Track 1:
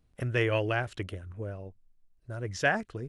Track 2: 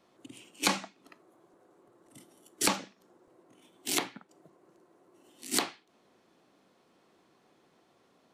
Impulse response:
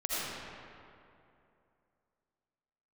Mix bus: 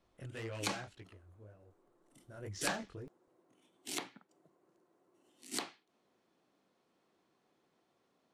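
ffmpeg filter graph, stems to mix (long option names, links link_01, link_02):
-filter_complex "[0:a]asoftclip=type=tanh:threshold=-26.5dB,flanger=delay=17:depth=5.4:speed=1.9,volume=2dB,afade=type=out:start_time=0.84:duration=0.26:silence=0.446684,afade=type=in:start_time=2.13:duration=0.27:silence=0.266073[link_01];[1:a]lowpass=12000,volume=-10dB[link_02];[link_01][link_02]amix=inputs=2:normalize=0"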